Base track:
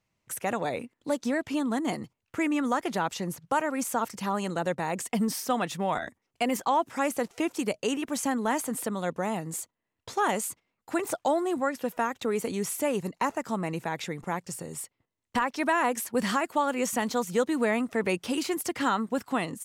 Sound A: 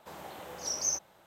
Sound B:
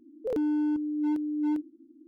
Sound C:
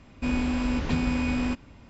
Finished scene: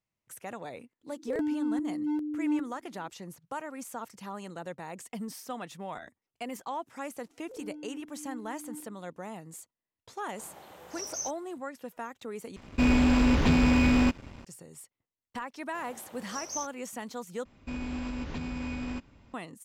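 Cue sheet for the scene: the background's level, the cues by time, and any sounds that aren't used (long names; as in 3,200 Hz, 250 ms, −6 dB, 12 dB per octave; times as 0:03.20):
base track −11 dB
0:01.03: mix in B −3 dB
0:07.24: mix in B −17.5 dB + four-comb reverb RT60 0.72 s, combs from 27 ms, DRR 6.5 dB
0:10.32: mix in A −5.5 dB
0:12.56: overwrite with C −1.5 dB + leveller curve on the samples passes 2
0:15.68: mix in A −6.5 dB
0:17.45: overwrite with C −7.5 dB + brickwall limiter −19.5 dBFS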